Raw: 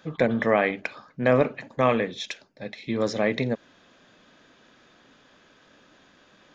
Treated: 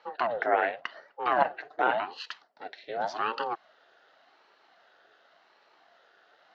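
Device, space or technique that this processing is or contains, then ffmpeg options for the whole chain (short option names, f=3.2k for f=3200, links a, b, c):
voice changer toy: -filter_complex "[0:a]asettb=1/sr,asplit=3[a][b][c];[a]atrim=end=1.364[d];[b]atrim=start=1.36:end=1.79,asetpts=PTS-STARTPTS,afade=t=in:d=0.004:c=qsin,afade=t=out:st=0.426:d=0.004:c=qsin,aecho=1:1:6.7:0.78,atrim=end_sample=18963[e];[c]atrim=start=1.786[f];[d][e]acrossfade=d=0.004:c1=hsin:c2=qsin[g];[g][f]acrossfade=d=0.004:c1=qsin:c2=hsin,aeval=exprs='val(0)*sin(2*PI*420*n/s+420*0.65/0.89*sin(2*PI*0.89*n/s))':c=same,highpass=540,equalizer=f=680:t=q:w=4:g=6,equalizer=f=1k:t=q:w=4:g=-6,equalizer=f=1.5k:t=q:w=4:g=5,equalizer=f=2.3k:t=q:w=4:g=-9,equalizer=f=3.4k:t=q:w=4:g=-4,lowpass=f=4.6k:w=0.5412,lowpass=f=4.6k:w=1.3066"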